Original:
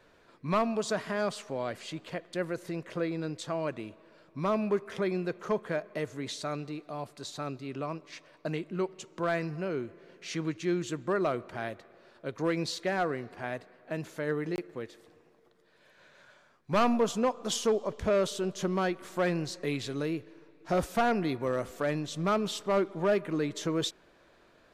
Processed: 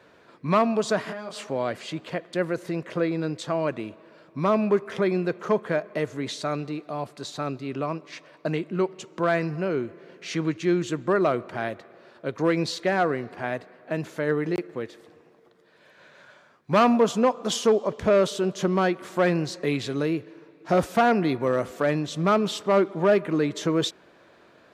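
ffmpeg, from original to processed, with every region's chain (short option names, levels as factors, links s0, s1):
-filter_complex "[0:a]asettb=1/sr,asplit=3[s0][s1][s2];[s0]atrim=end=1.054[s3];[s1]atrim=start=1.05:end=1.47,asetpts=PTS-STARTPTS,afade=t=in:d=0.004:c=qsin,afade=t=out:st=0.416:d=0.004:c=qsin,lowshelf=f=180:t=q:w=1.5:g=-6,acompressor=threshold=0.0141:ratio=10:attack=3.2:release=140:knee=1:detection=peak,asplit=2[s4][s5];[s5]adelay=23,volume=0.708[s6];[s4][s6]amix=inputs=2:normalize=0,atrim=end_sample=18522[s7];[s2]atrim=start=1.466[s8];[s3][s7]acrossfade=d=0.004:c1=hsin:c2=qsin[s9];[s9][s8]acrossfade=d=0.004:c1=qsin:c2=hsin,highpass=100,highshelf=f=4800:g=-6,volume=2.24"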